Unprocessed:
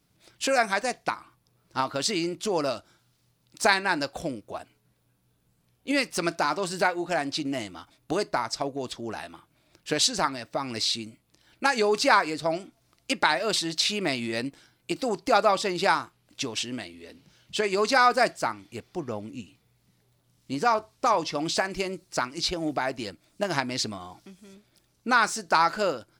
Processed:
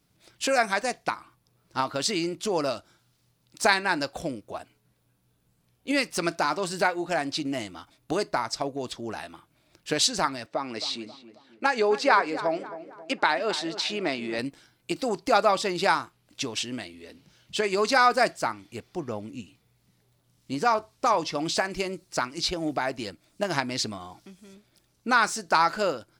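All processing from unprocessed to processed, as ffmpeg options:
-filter_complex "[0:a]asettb=1/sr,asplit=3[a][b][c];[a]atrim=end=10.464[d];[b]atrim=start=10.46:end=14.39,asetpts=PTS-STARTPTS,afade=t=in:d=0.004:c=qsin,afade=t=out:st=3.926:d=0.004:c=qsin,highpass=340,aemphasis=mode=reproduction:type=bsi,asplit=2[e][f];[f]adelay=269,lowpass=f=1.9k:p=1,volume=-13dB,asplit=2[g][h];[h]adelay=269,lowpass=f=1.9k:p=1,volume=0.48,asplit=2[i][j];[j]adelay=269,lowpass=f=1.9k:p=1,volume=0.48,asplit=2[k][l];[l]adelay=269,lowpass=f=1.9k:p=1,volume=0.48,asplit=2[m][n];[n]adelay=269,lowpass=f=1.9k:p=1,volume=0.48[o];[e][g][i][k][m][o]amix=inputs=6:normalize=0,atrim=end_sample=173313[p];[c]atrim=start=14.386[q];[d][p]acrossfade=d=0.004:c1=hsin:c2=qsin[r];[r][q]acrossfade=d=0.004:c1=qsin:c2=hsin"

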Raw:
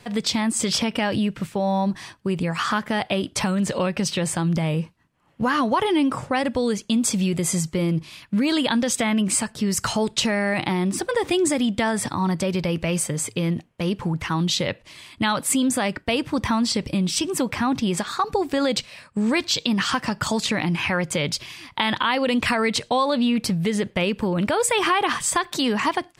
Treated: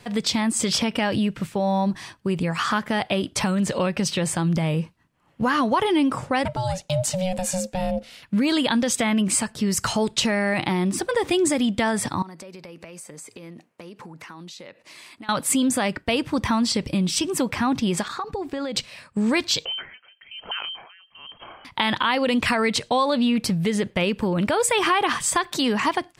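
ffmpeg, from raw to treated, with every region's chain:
-filter_complex "[0:a]asettb=1/sr,asplit=3[a][b][c];[a]atrim=end=6.454[d];[b]atrim=start=6.45:end=8.23,asetpts=PTS-STARTPTS,afade=t=in:d=0.004:c=qsin,afade=t=out:st=1.776:d=0.004:c=qsin,equalizer=f=770:w=5.4:g=-3.5,asoftclip=type=hard:threshold=-11dB,aeval=exprs='val(0)*sin(2*PI*370*n/s)':c=same[e];[c]atrim=start=8.226[f];[d][e]acrossfade=d=0.004:c1=hsin:c2=qsin[g];[g][f]acrossfade=d=0.004:c1=qsin:c2=hsin,asettb=1/sr,asplit=3[h][i][j];[h]atrim=end=12.224[k];[i]atrim=start=12.22:end=15.29,asetpts=PTS-STARTPTS,afade=t=in:d=0.004:c=qsin,afade=t=out:st=3.066:d=0.004:c=qsin,highpass=250,acompressor=threshold=-37dB:ratio=8:attack=3.2:release=140:knee=1:detection=peak,equalizer=f=3.2k:t=o:w=0.27:g=-7[l];[j]atrim=start=15.286[m];[k][l]acrossfade=d=0.004:c1=hsin:c2=qsin[n];[n][m]acrossfade=d=0.004:c1=qsin:c2=hsin,asettb=1/sr,asplit=3[o][p][q];[o]atrim=end=18.084[r];[p]atrim=start=18.08:end=18.75,asetpts=PTS-STARTPTS,afade=t=in:d=0.004:c=qsin,afade=t=out:st=0.666:d=0.004:c=qsin,agate=range=-6dB:threshold=-38dB:ratio=16:release=100:detection=peak,acompressor=threshold=-27dB:ratio=3:attack=3.2:release=140:knee=1:detection=peak,aemphasis=mode=reproduction:type=cd[s];[q]atrim=start=18.746[t];[r][s]acrossfade=d=0.004:c1=hsin:c2=qsin[u];[u][t]acrossfade=d=0.004:c1=qsin:c2=hsin,asettb=1/sr,asplit=3[v][w][x];[v]atrim=end=19.654[y];[w]atrim=start=19.65:end=21.65,asetpts=PTS-STARTPTS,afade=t=in:d=0.004:c=qsin,afade=t=out:st=1.996:d=0.004:c=qsin,acompressor=threshold=-26dB:ratio=3:attack=3.2:release=140:knee=1:detection=peak,lowpass=f=2.8k:t=q:w=0.5098,lowpass=f=2.8k:t=q:w=0.6013,lowpass=f=2.8k:t=q:w=0.9,lowpass=f=2.8k:t=q:w=2.563,afreqshift=-3300,aeval=exprs='val(0)*pow(10,-23*(0.5-0.5*cos(2*PI*1.1*n/s))/20)':c=same[z];[x]atrim=start=21.646[aa];[y][z]acrossfade=d=0.004:c1=hsin:c2=qsin[ab];[ab][aa]acrossfade=d=0.004:c1=qsin:c2=hsin"

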